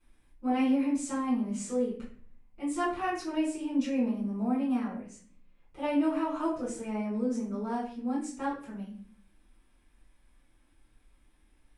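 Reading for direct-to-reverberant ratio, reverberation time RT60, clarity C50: −11.5 dB, 0.50 s, 4.5 dB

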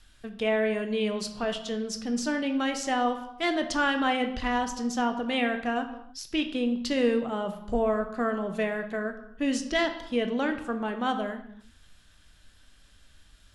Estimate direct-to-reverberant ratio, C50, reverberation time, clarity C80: 6.0 dB, 10.0 dB, non-exponential decay, 12.5 dB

